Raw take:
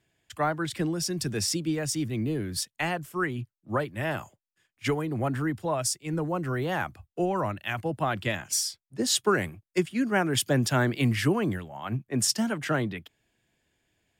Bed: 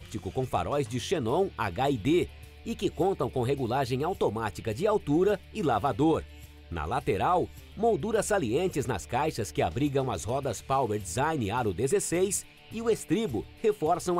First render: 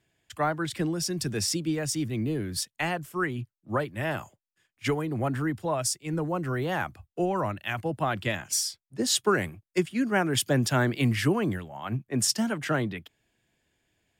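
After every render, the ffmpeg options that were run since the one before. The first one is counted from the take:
-af anull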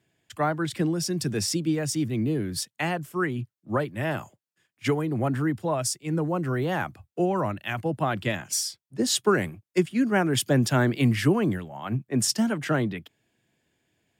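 -af "highpass=110,lowshelf=f=440:g=5"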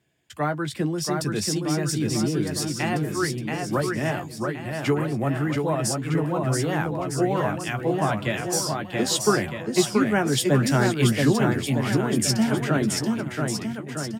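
-filter_complex "[0:a]asplit=2[s0][s1];[s1]adelay=14,volume=0.355[s2];[s0][s2]amix=inputs=2:normalize=0,aecho=1:1:680|1258|1749|2167|2522:0.631|0.398|0.251|0.158|0.1"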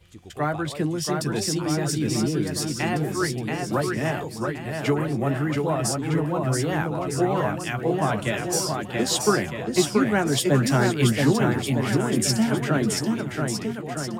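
-filter_complex "[1:a]volume=0.335[s0];[0:a][s0]amix=inputs=2:normalize=0"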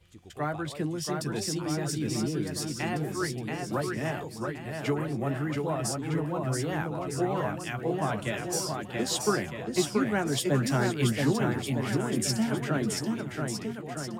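-af "volume=0.501"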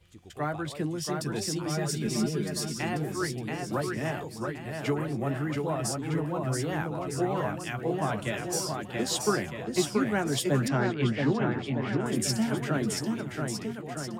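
-filter_complex "[0:a]asettb=1/sr,asplit=3[s0][s1][s2];[s0]atrim=end=1.694[s3];[s1]atrim=start=1.69:end=2.78,asetpts=PTS-STARTPTS,afade=t=in:d=0.004:c=qsin,afade=t=out:st=1.086:d=0.004:c=qsin,aecho=1:1:4.9:0.63,atrim=end_sample=48069[s4];[s2]atrim=start=2.776[s5];[s3][s4]acrossfade=d=0.004:c1=hsin:c2=qsin[s6];[s6][s5]acrossfade=d=0.004:c1=qsin:c2=hsin,asettb=1/sr,asplit=3[s7][s8][s9];[s7]atrim=end=10.684[s10];[s8]atrim=start=10.68:end=12.06,asetpts=PTS-STARTPTS,afade=t=in:d=0.004:c=qsin,afade=t=out:st=1.376:d=0.004:c=qsin,highpass=100,lowpass=3200[s11];[s9]atrim=start=12.056[s12];[s10][s11]acrossfade=d=0.004:c1=hsin:c2=qsin[s13];[s13][s12]acrossfade=d=0.004:c1=qsin:c2=hsin"

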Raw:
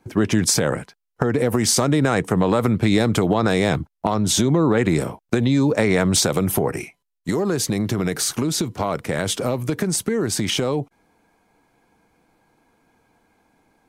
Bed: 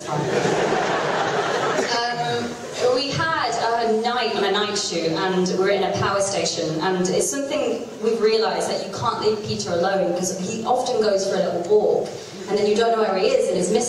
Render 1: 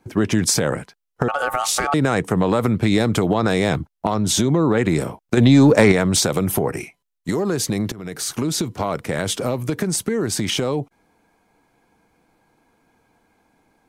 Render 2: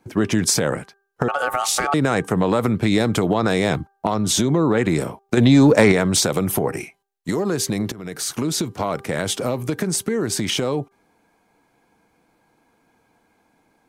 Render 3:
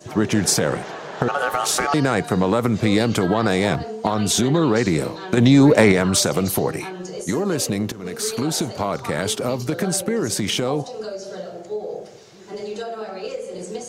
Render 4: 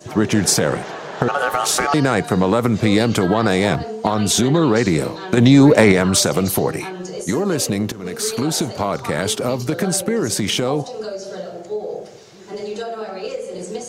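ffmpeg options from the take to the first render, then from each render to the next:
-filter_complex "[0:a]asettb=1/sr,asplit=3[s0][s1][s2];[s0]atrim=end=1.284[s3];[s1]atrim=start=1.28:end=1.94,asetpts=PTS-STARTPTS,afade=t=in:d=0.004:c=qsin,afade=t=out:st=0.656:d=0.004:c=qsin,aeval=exprs='val(0)*sin(2*PI*1000*n/s)':c=same[s4];[s2]atrim=start=1.936[s5];[s3][s4]acrossfade=d=0.004:c1=hsin:c2=qsin[s6];[s6][s5]acrossfade=d=0.004:c1=qsin:c2=hsin,asettb=1/sr,asplit=3[s7][s8][s9];[s7]atrim=end=5.374[s10];[s8]atrim=start=5.37:end=5.92,asetpts=PTS-STARTPTS,afade=t=in:d=0.004:c=qsin,afade=t=out:st=0.546:d=0.004:c=qsin,acontrast=89[s11];[s9]atrim=start=5.916[s12];[s10][s11]acrossfade=d=0.004:c1=hsin:c2=qsin[s13];[s13][s12]acrossfade=d=0.004:c1=qsin:c2=hsin,asplit=2[s14][s15];[s14]atrim=end=7.92,asetpts=PTS-STARTPTS,afade=t=out:st=7.916:d=0.004:c=hsin:silence=0.125893[s16];[s15]atrim=start=7.92,asetpts=PTS-STARTPTS,afade=t=in:d=0.53:silence=0.125893[s17];[s16][s17]concat=n=2:v=0:a=1"
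-af "lowshelf=f=69:g=-7.5,bandreject=f=395:t=h:w=4,bandreject=f=790:t=h:w=4,bandreject=f=1185:t=h:w=4,bandreject=f=1580:t=h:w=4"
-filter_complex "[1:a]volume=0.266[s0];[0:a][s0]amix=inputs=2:normalize=0"
-af "volume=1.33,alimiter=limit=0.794:level=0:latency=1"

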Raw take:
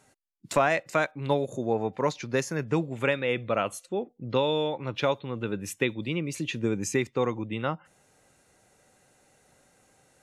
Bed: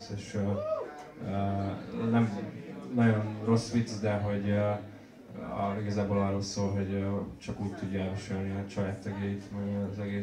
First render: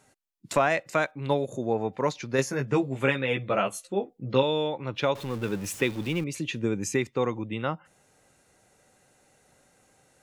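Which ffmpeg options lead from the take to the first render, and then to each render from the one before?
-filter_complex "[0:a]asettb=1/sr,asplit=3[s0][s1][s2];[s0]atrim=end=2.374[s3];[s1]atrim=start=2.37:end=4.43,asetpts=PTS-STARTPTS,afade=t=in:d=0.004:c=qsin,afade=t=out:st=2.056:d=0.004:c=qsin,asplit=2[s4][s5];[s5]adelay=15,volume=0.708[s6];[s4][s6]amix=inputs=2:normalize=0,atrim=end_sample=90846[s7];[s2]atrim=start=4.426[s8];[s3][s7]acrossfade=d=0.004:c1=hsin:c2=qsin[s9];[s9][s8]acrossfade=d=0.004:c1=qsin:c2=hsin,asettb=1/sr,asplit=3[s10][s11][s12];[s10]atrim=end=5.154[s13];[s11]atrim=start=5.15:end=6.24,asetpts=PTS-STARTPTS,afade=t=in:d=0.004:c=qsin,afade=t=out:st=1.086:d=0.004:c=qsin,aeval=exprs='val(0)+0.5*0.0141*sgn(val(0))':c=same[s14];[s12]atrim=start=6.236[s15];[s13][s14]acrossfade=d=0.004:c1=hsin:c2=qsin[s16];[s16][s15]acrossfade=d=0.004:c1=qsin:c2=hsin"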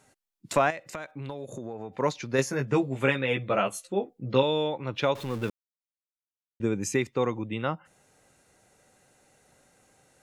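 -filter_complex "[0:a]asettb=1/sr,asplit=3[s0][s1][s2];[s0]atrim=end=0.704[s3];[s1]atrim=start=0.7:end=1.99,asetpts=PTS-STARTPTS,afade=t=in:d=0.004:c=qsin,afade=t=out:st=1.286:d=0.004:c=qsin,acompressor=threshold=0.0251:ratio=12:attack=3.2:release=140:knee=1:detection=peak[s4];[s2]atrim=start=1.986[s5];[s3][s4]acrossfade=d=0.004:c1=hsin:c2=qsin[s6];[s6][s5]acrossfade=d=0.004:c1=qsin:c2=hsin,asplit=3[s7][s8][s9];[s7]atrim=end=5.5,asetpts=PTS-STARTPTS,afade=t=out:st=5.496:d=0.004:c=hsin[s10];[s8]atrim=start=5.5:end=6.6,asetpts=PTS-STARTPTS,volume=0[s11];[s9]atrim=start=6.6,asetpts=PTS-STARTPTS,afade=t=in:d=0.004:c=hsin[s12];[s10][s11][s12]concat=n=3:v=0:a=1"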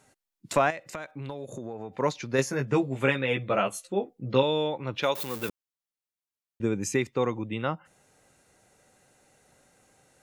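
-filter_complex "[0:a]asplit=3[s0][s1][s2];[s0]afade=t=out:st=5.02:d=0.02[s3];[s1]aemphasis=mode=production:type=bsi,afade=t=in:st=5.02:d=0.02,afade=t=out:st=5.48:d=0.02[s4];[s2]afade=t=in:st=5.48:d=0.02[s5];[s3][s4][s5]amix=inputs=3:normalize=0"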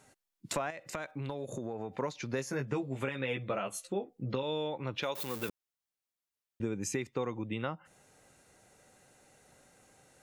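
-af "alimiter=limit=0.178:level=0:latency=1:release=136,acompressor=threshold=0.0224:ratio=3"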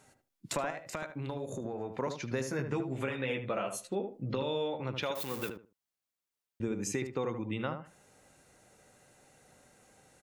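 -filter_complex "[0:a]asplit=2[s0][s1];[s1]adelay=76,lowpass=f=1300:p=1,volume=0.501,asplit=2[s2][s3];[s3]adelay=76,lowpass=f=1300:p=1,volume=0.22,asplit=2[s4][s5];[s5]adelay=76,lowpass=f=1300:p=1,volume=0.22[s6];[s0][s2][s4][s6]amix=inputs=4:normalize=0"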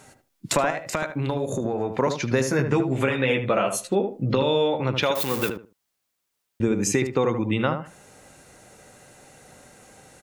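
-af "volume=3.98"

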